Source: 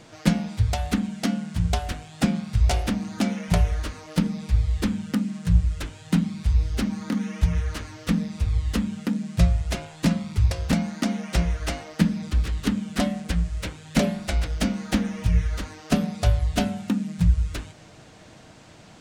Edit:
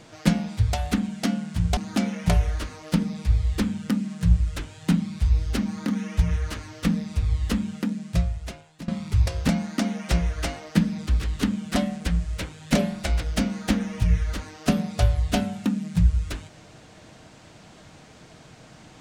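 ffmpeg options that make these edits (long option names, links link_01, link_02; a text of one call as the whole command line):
ffmpeg -i in.wav -filter_complex "[0:a]asplit=3[link_01][link_02][link_03];[link_01]atrim=end=1.772[link_04];[link_02]atrim=start=3.008:end=10.12,asetpts=PTS-STARTPTS,afade=type=out:start_time=5.912:duration=1.2:silence=0.0944061[link_05];[link_03]atrim=start=10.12,asetpts=PTS-STARTPTS,afade=type=in:duration=0.004:curve=hsin:silence=0.0944061[link_06];[link_05][link_06]concat=n=2:v=0:a=1[link_07];[link_04][link_07]acrossfade=duration=0.004:curve1=hsin:curve2=hsin" out.wav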